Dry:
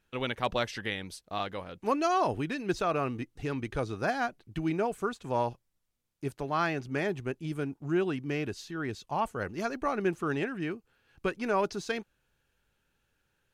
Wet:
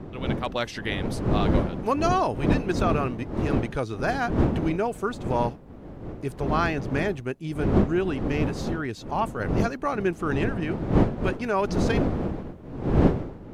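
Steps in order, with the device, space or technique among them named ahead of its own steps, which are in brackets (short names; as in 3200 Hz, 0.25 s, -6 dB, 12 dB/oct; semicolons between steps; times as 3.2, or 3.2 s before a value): smartphone video outdoors (wind noise 310 Hz -30 dBFS; AGC gain up to 8 dB; gain -4 dB; AAC 128 kbps 48000 Hz)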